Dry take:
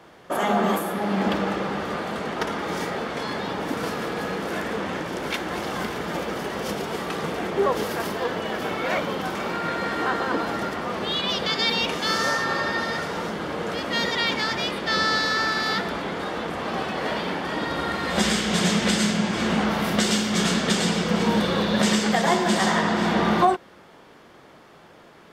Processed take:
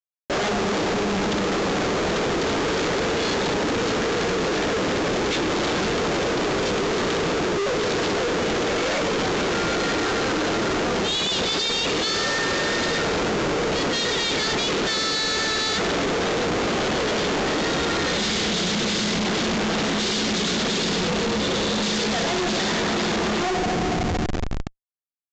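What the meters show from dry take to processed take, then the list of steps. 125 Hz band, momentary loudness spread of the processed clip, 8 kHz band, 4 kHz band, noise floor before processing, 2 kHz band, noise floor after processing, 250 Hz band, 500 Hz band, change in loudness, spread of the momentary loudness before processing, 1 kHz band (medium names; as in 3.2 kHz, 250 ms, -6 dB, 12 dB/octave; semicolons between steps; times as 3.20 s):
+1.0 dB, 2 LU, +3.5 dB, +3.5 dB, -49 dBFS, +1.0 dB, -24 dBFS, +0.5 dB, +3.5 dB, +2.0 dB, 8 LU, -0.5 dB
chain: fifteen-band graphic EQ 400 Hz +6 dB, 1 kHz -6 dB, 4 kHz +9 dB; FDN reverb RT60 3.8 s, high-frequency decay 0.4×, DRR 10.5 dB; Schmitt trigger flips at -34.5 dBFS; resampled via 16 kHz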